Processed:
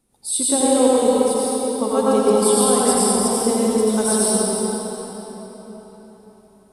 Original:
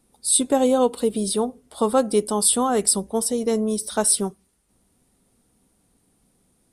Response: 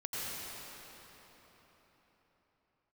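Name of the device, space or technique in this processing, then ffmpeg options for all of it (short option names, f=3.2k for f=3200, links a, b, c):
cathedral: -filter_complex "[0:a]asettb=1/sr,asplit=3[a][b][c];[a]atrim=end=1.084[d];[b]atrim=start=1.08:end=1.81,asetpts=PTS-STARTPTS,afade=t=in:d=0.004:c=qsin,afade=t=out:st=0.726:d=0.004:c=qsin,aderivative[e];[c]atrim=start=1.806[f];[d][e]acrossfade=d=0.004:c1=hsin:c2=qsin[g];[g][f]acrossfade=d=0.004:c1=qsin:c2=hsin[h];[1:a]atrim=start_sample=2205[i];[h][i]afir=irnorm=-1:irlink=0"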